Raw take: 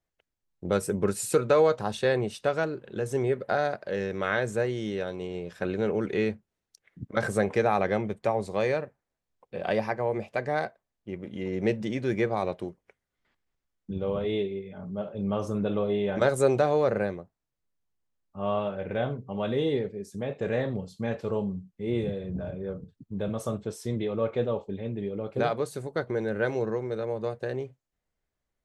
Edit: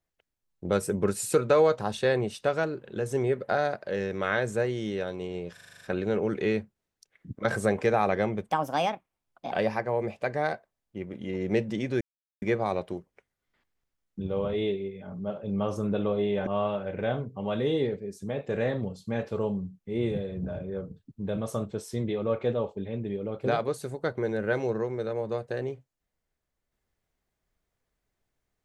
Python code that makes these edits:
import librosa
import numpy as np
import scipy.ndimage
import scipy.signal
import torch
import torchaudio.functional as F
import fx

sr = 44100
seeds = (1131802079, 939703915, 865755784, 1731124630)

y = fx.edit(x, sr, fx.stutter(start_s=5.53, slice_s=0.04, count=8),
    fx.speed_span(start_s=8.21, length_s=1.43, speed=1.39),
    fx.insert_silence(at_s=12.13, length_s=0.41),
    fx.cut(start_s=16.18, length_s=2.21), tone=tone)